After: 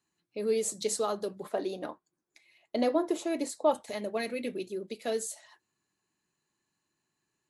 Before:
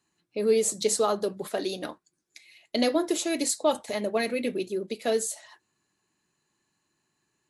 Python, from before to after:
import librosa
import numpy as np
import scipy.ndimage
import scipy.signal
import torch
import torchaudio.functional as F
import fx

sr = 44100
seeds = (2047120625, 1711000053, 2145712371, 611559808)

y = fx.curve_eq(x, sr, hz=(120.0, 1000.0, 1500.0, 4500.0), db=(0, 6, 0, -7), at=(1.43, 3.74))
y = F.gain(torch.from_numpy(y), -6.0).numpy()